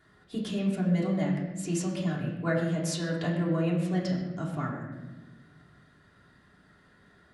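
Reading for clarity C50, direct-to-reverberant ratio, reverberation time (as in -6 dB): 4.0 dB, -7.5 dB, 1.2 s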